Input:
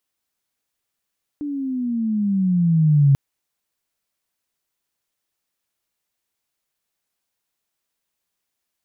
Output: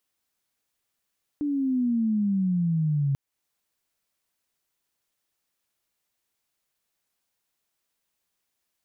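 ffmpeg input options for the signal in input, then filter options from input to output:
-f lavfi -i "aevalsrc='pow(10,(-10+14*(t/1.74-1))/20)*sin(2*PI*297*1.74/(-13.5*log(2)/12)*(exp(-13.5*log(2)/12*t/1.74)-1))':d=1.74:s=44100"
-af "alimiter=limit=0.0891:level=0:latency=1:release=303"

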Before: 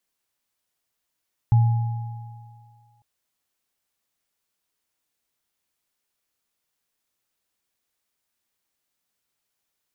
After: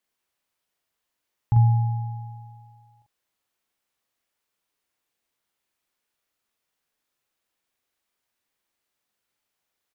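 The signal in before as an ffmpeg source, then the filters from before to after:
-f lavfi -i "aevalsrc='0.266*pow(10,-3*t/1.81)*sin(2*PI*115*t)+0.0316*pow(10,-3*t/2.73)*sin(2*PI*832*t)':d=1.5:s=44100"
-filter_complex "[0:a]bass=f=250:g=-3,treble=f=4000:g=-5,asplit=2[s0][s1];[s1]adelay=43,volume=0.708[s2];[s0][s2]amix=inputs=2:normalize=0"

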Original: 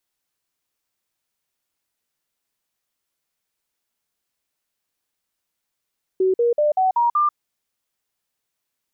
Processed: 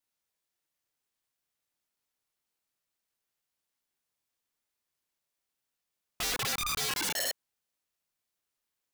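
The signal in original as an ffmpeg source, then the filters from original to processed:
-f lavfi -i "aevalsrc='0.188*clip(min(mod(t,0.19),0.14-mod(t,0.19))/0.005,0,1)*sin(2*PI*376*pow(2,floor(t/0.19)/3)*mod(t,0.19))':d=1.14:s=44100"
-af "flanger=delay=22.5:depth=7.8:speed=0.66,aeval=exprs='val(0)*sin(2*PI*610*n/s)':c=same,aeval=exprs='(mod(21.1*val(0)+1,2)-1)/21.1':c=same"

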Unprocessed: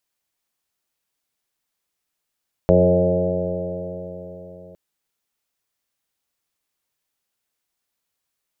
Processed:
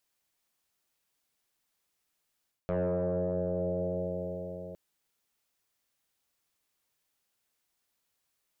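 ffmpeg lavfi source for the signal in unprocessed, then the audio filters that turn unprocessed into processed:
-f lavfi -i "aevalsrc='0.0944*pow(10,-3*t/4.07)*sin(2*PI*88.54*t)+0.158*pow(10,-3*t/4.07)*sin(2*PI*177.32*t)+0.0335*pow(10,-3*t/4.07)*sin(2*PI*266.59*t)+0.0841*pow(10,-3*t/4.07)*sin(2*PI*356.57*t)+0.126*pow(10,-3*t/4.07)*sin(2*PI*447.51*t)+0.178*pow(10,-3*t/4.07)*sin(2*PI*539.63*t)+0.141*pow(10,-3*t/4.07)*sin(2*PI*633.16*t)+0.015*pow(10,-3*t/4.07)*sin(2*PI*728.33*t)+0.0168*pow(10,-3*t/4.07)*sin(2*PI*825.33*t)':d=2.06:s=44100"
-af "asoftclip=type=tanh:threshold=0.266,areverse,acompressor=threshold=0.0398:ratio=12,areverse"

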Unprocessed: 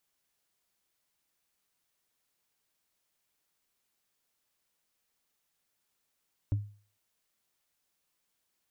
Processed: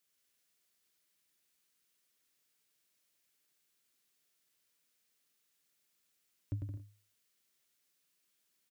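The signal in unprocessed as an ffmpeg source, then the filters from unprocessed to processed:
-f lavfi -i "aevalsrc='0.075*pow(10,-3*t/0.41)*sin(2*PI*103*t)+0.0211*pow(10,-3*t/0.121)*sin(2*PI*284*t)+0.00596*pow(10,-3*t/0.054)*sin(2*PI*556.6*t)+0.00168*pow(10,-3*t/0.03)*sin(2*PI*920.1*t)+0.000473*pow(10,-3*t/0.018)*sin(2*PI*1374*t)':d=0.45:s=44100"
-af "highpass=f=180:p=1,equalizer=f=840:w=1.2:g=-9,aecho=1:1:100|170|219|253.3|277.3:0.631|0.398|0.251|0.158|0.1"

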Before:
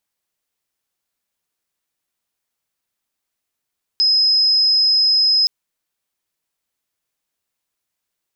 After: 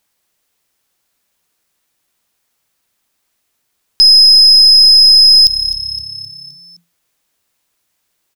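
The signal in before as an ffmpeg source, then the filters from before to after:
-f lavfi -i "sine=f=5090:d=1.47:r=44100,volume=6.56dB"
-filter_complex "[0:a]asplit=2[s0][s1];[s1]acrusher=bits=3:dc=4:mix=0:aa=0.000001,volume=0.376[s2];[s0][s2]amix=inputs=2:normalize=0,asplit=6[s3][s4][s5][s6][s7][s8];[s4]adelay=259,afreqshift=34,volume=0.141[s9];[s5]adelay=518,afreqshift=68,volume=0.0759[s10];[s6]adelay=777,afreqshift=102,volume=0.0412[s11];[s7]adelay=1036,afreqshift=136,volume=0.0221[s12];[s8]adelay=1295,afreqshift=170,volume=0.012[s13];[s3][s9][s10][s11][s12][s13]amix=inputs=6:normalize=0,alimiter=level_in=4.22:limit=0.891:release=50:level=0:latency=1"

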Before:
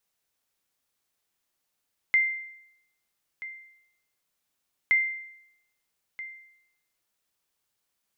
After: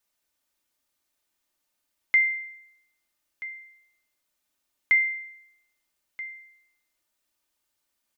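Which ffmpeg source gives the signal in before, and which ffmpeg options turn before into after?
-f lavfi -i "aevalsrc='0.168*(sin(2*PI*2090*mod(t,2.77))*exp(-6.91*mod(t,2.77)/0.78)+0.15*sin(2*PI*2090*max(mod(t,2.77)-1.28,0))*exp(-6.91*max(mod(t,2.77)-1.28,0)/0.78))':d=5.54:s=44100"
-af "aecho=1:1:3.3:0.49"

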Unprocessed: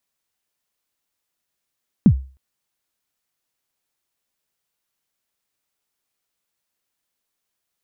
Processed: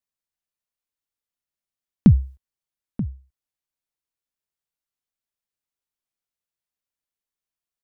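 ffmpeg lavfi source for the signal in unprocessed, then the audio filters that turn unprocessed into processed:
-f lavfi -i "aevalsrc='0.631*pow(10,-3*t/0.36)*sin(2*PI*(250*0.075/log(66/250)*(exp(log(66/250)*min(t,0.075)/0.075)-1)+66*max(t-0.075,0)))':d=0.31:s=44100"
-filter_complex "[0:a]agate=range=0.224:threshold=0.01:ratio=16:detection=peak,lowshelf=f=93:g=8,asplit=2[s0][s1];[s1]adelay=932.9,volume=0.2,highshelf=f=4000:g=-21[s2];[s0][s2]amix=inputs=2:normalize=0"

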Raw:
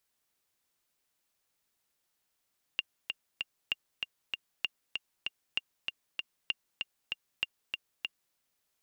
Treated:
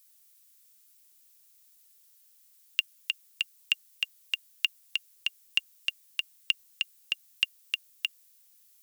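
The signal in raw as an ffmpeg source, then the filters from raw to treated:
-f lavfi -i "aevalsrc='pow(10,(-16-4*gte(mod(t,3*60/194),60/194))/20)*sin(2*PI*2800*mod(t,60/194))*exp(-6.91*mod(t,60/194)/0.03)':d=5.56:s=44100"
-af "equalizer=f=500:w=0.55:g=-7,crystalizer=i=5.5:c=0"

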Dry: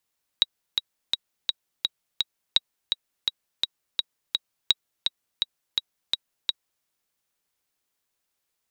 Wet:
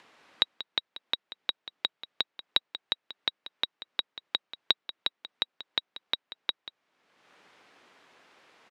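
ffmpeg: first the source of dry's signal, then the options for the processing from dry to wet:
-f lavfi -i "aevalsrc='pow(10,(-4.5-5*gte(mod(t,6*60/168),60/168))/20)*sin(2*PI*3830*mod(t,60/168))*exp(-6.91*mod(t,60/168)/0.03)':d=6.42:s=44100"
-filter_complex "[0:a]asplit=2[s0][s1];[s1]acompressor=mode=upward:threshold=0.0447:ratio=2.5,volume=0.944[s2];[s0][s2]amix=inputs=2:normalize=0,highpass=220,lowpass=2400,aecho=1:1:186:0.188"

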